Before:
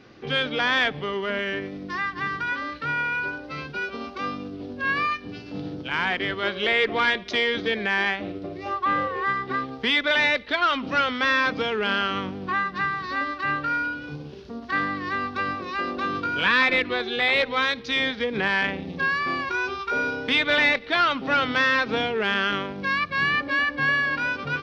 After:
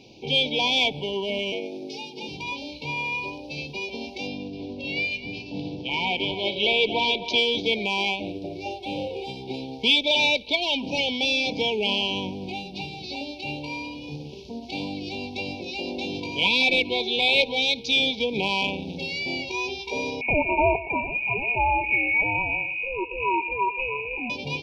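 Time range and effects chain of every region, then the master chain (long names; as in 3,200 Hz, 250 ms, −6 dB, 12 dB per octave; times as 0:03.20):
0:01.52–0:02.29: parametric band 2,400 Hz −2.5 dB 1.9 octaves + mains-hum notches 50/100/150 Hz + frequency shifter +76 Hz
0:04.27–0:07.38: low-pass filter 5,000 Hz + single-tap delay 260 ms −12 dB
0:20.21–0:24.30: single-tap delay 121 ms −15.5 dB + voice inversion scrambler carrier 2,700 Hz
whole clip: high-shelf EQ 2,200 Hz +8 dB; brick-wall band-stop 1,000–2,200 Hz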